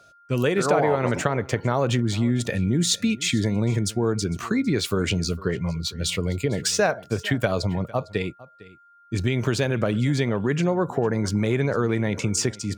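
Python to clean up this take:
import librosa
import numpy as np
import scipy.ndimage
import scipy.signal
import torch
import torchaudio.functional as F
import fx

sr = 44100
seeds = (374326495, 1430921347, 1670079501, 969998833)

y = fx.notch(x, sr, hz=1400.0, q=30.0)
y = fx.fix_echo_inverse(y, sr, delay_ms=454, level_db=-20.5)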